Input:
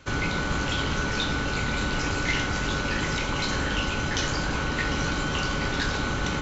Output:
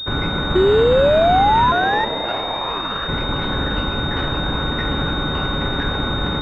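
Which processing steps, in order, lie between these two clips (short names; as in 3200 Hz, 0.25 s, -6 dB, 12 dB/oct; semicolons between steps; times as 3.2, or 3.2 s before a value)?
0.55–2.05 painted sound rise 360–1400 Hz -20 dBFS; 1.71–3.07 ring modulator 350 Hz -> 1500 Hz; pulse-width modulation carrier 3700 Hz; gain +6 dB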